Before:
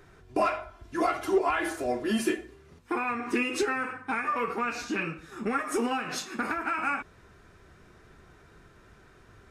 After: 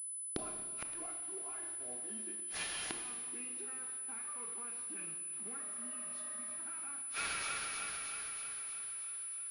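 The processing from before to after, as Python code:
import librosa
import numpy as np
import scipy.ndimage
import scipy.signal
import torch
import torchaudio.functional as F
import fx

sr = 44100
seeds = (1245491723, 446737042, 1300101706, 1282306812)

y = fx.spec_repair(x, sr, seeds[0], start_s=5.68, length_s=0.89, low_hz=270.0, high_hz=2100.0, source='before')
y = fx.rider(y, sr, range_db=4, speed_s=0.5)
y = fx.quant_dither(y, sr, seeds[1], bits=6, dither='none')
y = fx.echo_wet_highpass(y, sr, ms=316, feedback_pct=65, hz=3000.0, wet_db=-10.5)
y = fx.gate_flip(y, sr, shuts_db=-34.0, range_db=-36)
y = fx.rev_schroeder(y, sr, rt60_s=1.7, comb_ms=25, drr_db=5.5)
y = fx.pwm(y, sr, carrier_hz=10000.0)
y = F.gain(torch.from_numpy(y), 11.0).numpy()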